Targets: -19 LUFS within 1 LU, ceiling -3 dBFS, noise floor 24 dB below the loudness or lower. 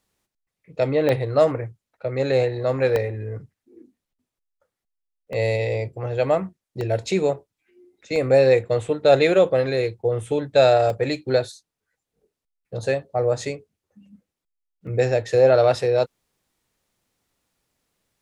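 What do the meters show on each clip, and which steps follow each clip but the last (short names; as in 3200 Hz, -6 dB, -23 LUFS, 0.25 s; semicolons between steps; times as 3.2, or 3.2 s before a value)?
dropouts 7; longest dropout 1.3 ms; loudness -21.0 LUFS; peak -3.5 dBFS; loudness target -19.0 LUFS
-> interpolate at 1.09/2.96/5.33/6.81/8.16/10.9/14.87, 1.3 ms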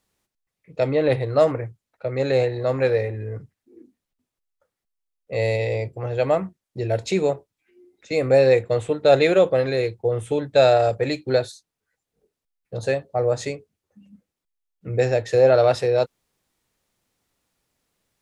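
dropouts 0; loudness -21.0 LUFS; peak -3.5 dBFS; loudness target -19.0 LUFS
-> gain +2 dB; limiter -3 dBFS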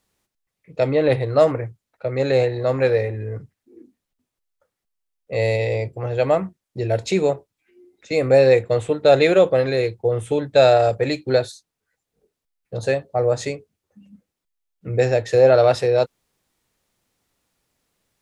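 loudness -19.0 LUFS; peak -3.0 dBFS; noise floor -83 dBFS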